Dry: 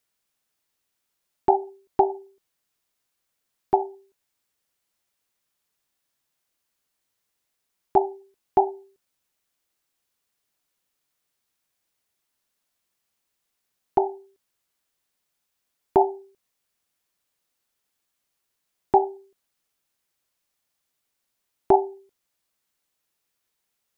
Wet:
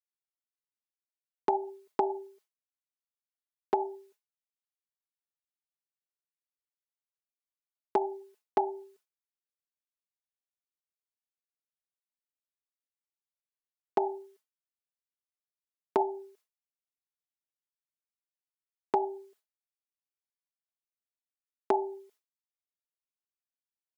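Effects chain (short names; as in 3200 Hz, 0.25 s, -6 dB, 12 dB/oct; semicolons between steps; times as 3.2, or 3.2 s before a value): HPF 370 Hz; expander -57 dBFS; comb 4.7 ms, depth 90%; limiter -8.5 dBFS, peak gain reduction 5.5 dB; compressor, threshold -24 dBFS, peak gain reduction 10.5 dB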